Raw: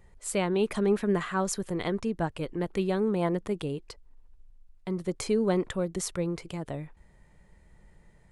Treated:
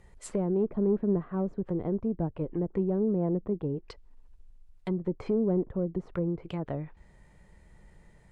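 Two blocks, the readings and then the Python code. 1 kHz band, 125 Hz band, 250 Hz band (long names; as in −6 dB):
−8.5 dB, +1.5 dB, +1.0 dB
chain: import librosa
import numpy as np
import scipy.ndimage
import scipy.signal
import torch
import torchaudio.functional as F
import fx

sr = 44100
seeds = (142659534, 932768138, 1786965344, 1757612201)

y = fx.tube_stage(x, sr, drive_db=20.0, bias=0.3)
y = fx.env_lowpass_down(y, sr, base_hz=480.0, full_db=-28.5)
y = F.gain(torch.from_numpy(y), 2.5).numpy()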